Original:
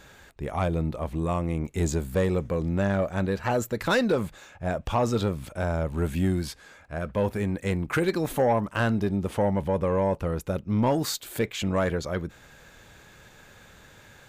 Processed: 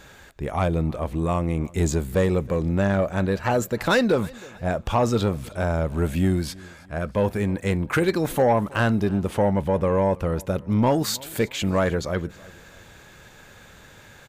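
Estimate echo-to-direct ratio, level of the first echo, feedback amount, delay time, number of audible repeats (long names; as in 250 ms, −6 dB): −22.0 dB, −23.0 dB, 42%, 319 ms, 2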